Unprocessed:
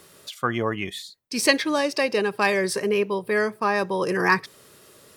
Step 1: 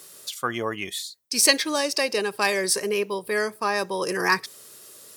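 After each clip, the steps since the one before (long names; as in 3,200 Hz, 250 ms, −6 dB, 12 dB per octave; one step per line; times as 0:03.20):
bass and treble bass −6 dB, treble +11 dB
level −2 dB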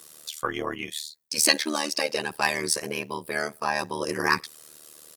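comb filter 6.1 ms, depth 69%
amplitude modulation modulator 76 Hz, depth 90%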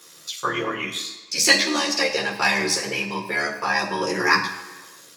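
convolution reverb RT60 1.3 s, pre-delay 3 ms, DRR −3 dB
level −4.5 dB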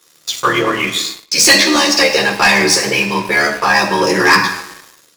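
leveller curve on the samples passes 3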